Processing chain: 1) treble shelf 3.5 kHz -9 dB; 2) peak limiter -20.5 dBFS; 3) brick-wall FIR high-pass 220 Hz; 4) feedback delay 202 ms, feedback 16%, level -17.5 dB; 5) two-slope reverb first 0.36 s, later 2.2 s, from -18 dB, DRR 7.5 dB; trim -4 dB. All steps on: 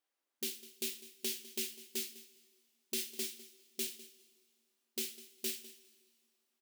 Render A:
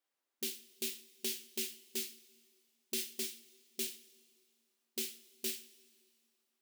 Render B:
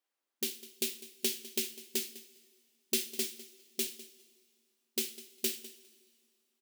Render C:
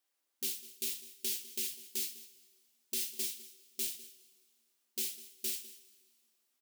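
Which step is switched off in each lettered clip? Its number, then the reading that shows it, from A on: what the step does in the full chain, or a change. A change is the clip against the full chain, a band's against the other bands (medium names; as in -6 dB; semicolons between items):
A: 4, momentary loudness spread change -6 LU; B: 2, crest factor change +3.0 dB; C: 1, 8 kHz band +6.5 dB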